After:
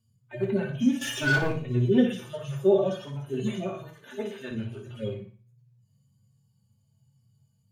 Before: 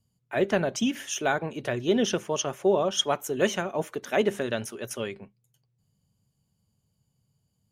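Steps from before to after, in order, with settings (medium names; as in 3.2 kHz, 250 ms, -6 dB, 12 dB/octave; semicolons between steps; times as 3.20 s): harmonic-percussive separation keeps harmonic; 1.01–1.52 s: waveshaping leveller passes 3; 2.10–2.67 s: treble shelf 3.5 kHz +7.5 dB; 3.93–4.51 s: high-pass 770 Hz 6 dB/octave; flutter echo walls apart 9.9 m, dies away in 0.38 s; reverberation RT60 0.25 s, pre-delay 3 ms, DRR 2.5 dB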